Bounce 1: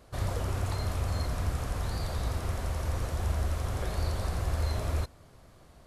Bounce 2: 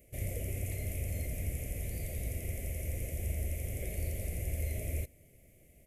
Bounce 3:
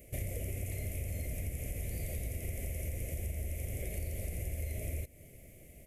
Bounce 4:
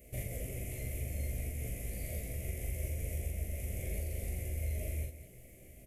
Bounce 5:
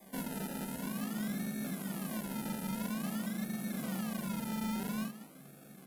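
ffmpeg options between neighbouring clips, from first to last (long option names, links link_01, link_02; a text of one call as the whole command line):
ffmpeg -i in.wav -af "firequalizer=gain_entry='entry(610,0);entry(940,-29);entry(1500,-22);entry(2100,8);entry(4100,-15);entry(6400,1);entry(12000,14)':delay=0.05:min_phase=1,volume=-5.5dB" out.wav
ffmpeg -i in.wav -af "acompressor=threshold=-41dB:ratio=6,volume=6.5dB" out.wav
ffmpeg -i in.wav -filter_complex "[0:a]asplit=2[link_01][link_02];[link_02]adelay=16,volume=-5dB[link_03];[link_01][link_03]amix=inputs=2:normalize=0,aecho=1:1:40.82|195.3:0.794|0.316,volume=-4dB" out.wav
ffmpeg -i in.wav -filter_complex "[0:a]afreqshift=140,acrossover=split=5600[link_01][link_02];[link_01]acrusher=samples=31:mix=1:aa=0.000001:lfo=1:lforange=18.6:lforate=0.49[link_03];[link_03][link_02]amix=inputs=2:normalize=0,volume=32dB,asoftclip=hard,volume=-32dB" out.wav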